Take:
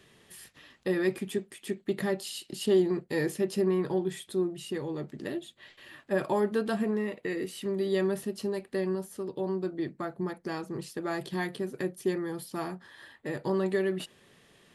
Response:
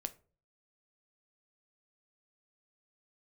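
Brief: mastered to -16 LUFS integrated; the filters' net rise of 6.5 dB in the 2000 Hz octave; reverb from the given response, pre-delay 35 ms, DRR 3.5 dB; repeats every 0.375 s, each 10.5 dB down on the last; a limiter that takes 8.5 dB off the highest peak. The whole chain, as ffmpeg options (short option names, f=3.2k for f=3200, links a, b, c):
-filter_complex "[0:a]equalizer=f=2k:t=o:g=7.5,alimiter=limit=-23dB:level=0:latency=1,aecho=1:1:375|750|1125:0.299|0.0896|0.0269,asplit=2[a][b];[1:a]atrim=start_sample=2205,adelay=35[c];[b][c]afir=irnorm=-1:irlink=0,volume=-2dB[d];[a][d]amix=inputs=2:normalize=0,volume=16dB"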